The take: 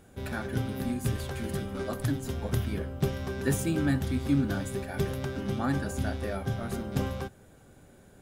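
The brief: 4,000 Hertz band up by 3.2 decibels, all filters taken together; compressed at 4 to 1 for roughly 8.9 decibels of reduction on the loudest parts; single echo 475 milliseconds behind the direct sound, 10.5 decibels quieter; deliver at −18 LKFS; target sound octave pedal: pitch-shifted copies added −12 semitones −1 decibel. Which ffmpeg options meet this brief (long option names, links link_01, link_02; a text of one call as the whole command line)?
ffmpeg -i in.wav -filter_complex "[0:a]equalizer=frequency=4000:width_type=o:gain=4,acompressor=threshold=-32dB:ratio=4,aecho=1:1:475:0.299,asplit=2[link_01][link_02];[link_02]asetrate=22050,aresample=44100,atempo=2,volume=-1dB[link_03];[link_01][link_03]amix=inputs=2:normalize=0,volume=16dB" out.wav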